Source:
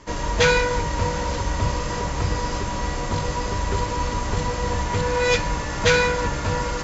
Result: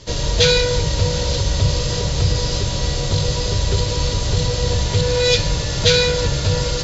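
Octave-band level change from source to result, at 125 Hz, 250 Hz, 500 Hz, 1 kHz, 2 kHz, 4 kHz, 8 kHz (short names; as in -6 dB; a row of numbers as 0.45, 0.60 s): +7.5 dB, +2.5 dB, +3.5 dB, -5.5 dB, -1.5 dB, +10.5 dB, n/a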